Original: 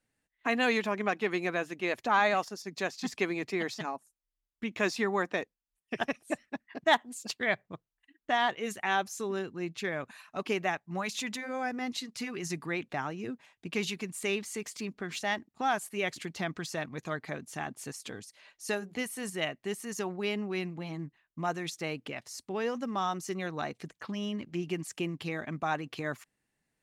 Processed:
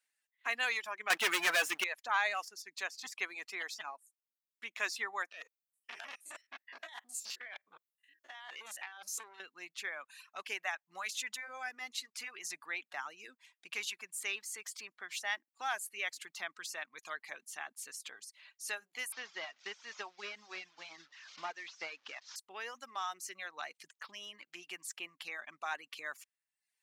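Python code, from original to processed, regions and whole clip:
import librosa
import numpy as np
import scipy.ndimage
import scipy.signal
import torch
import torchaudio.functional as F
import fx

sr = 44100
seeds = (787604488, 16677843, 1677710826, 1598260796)

y = fx.chain(x, sr, fx.low_shelf(hz=200.0, db=5.5),
    fx.leveller(passes=5), at=(1.1, 1.84))
y = fx.chain(y, sr, fx.spec_steps(hold_ms=50),
    fx.over_compress(threshold_db=-38.0, ratio=-1.0),
    fx.transformer_sat(knee_hz=2300.0), at=(5.32, 9.4))
y = fx.chain(y, sr, fx.delta_mod(bps=32000, step_db=-44.5),
    fx.transient(attack_db=6, sustain_db=-3), at=(19.12, 22.36))
y = scipy.signal.sosfilt(scipy.signal.bessel(2, 1700.0, 'highpass', norm='mag', fs=sr, output='sos'), y)
y = fx.dereverb_blind(y, sr, rt60_s=0.7)
y = fx.dynamic_eq(y, sr, hz=4100.0, q=0.76, threshold_db=-51.0, ratio=4.0, max_db=-4)
y = F.gain(torch.from_numpy(y), 1.5).numpy()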